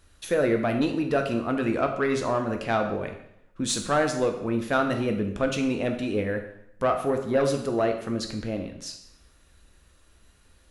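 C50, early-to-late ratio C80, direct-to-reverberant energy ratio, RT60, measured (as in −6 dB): 8.0 dB, 10.5 dB, 4.0 dB, 0.75 s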